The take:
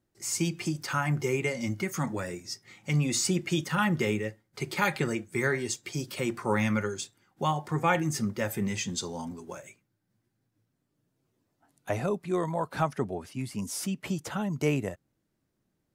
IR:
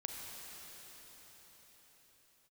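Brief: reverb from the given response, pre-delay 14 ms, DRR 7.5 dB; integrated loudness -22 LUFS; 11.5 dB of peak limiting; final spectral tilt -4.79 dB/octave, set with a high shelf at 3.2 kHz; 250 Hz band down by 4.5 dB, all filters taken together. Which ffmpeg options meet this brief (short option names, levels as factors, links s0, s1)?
-filter_complex "[0:a]equalizer=f=250:t=o:g=-7,highshelf=f=3200:g=-6,alimiter=level_in=1.06:limit=0.0631:level=0:latency=1,volume=0.944,asplit=2[s0][s1];[1:a]atrim=start_sample=2205,adelay=14[s2];[s1][s2]afir=irnorm=-1:irlink=0,volume=0.422[s3];[s0][s3]amix=inputs=2:normalize=0,volume=4.73"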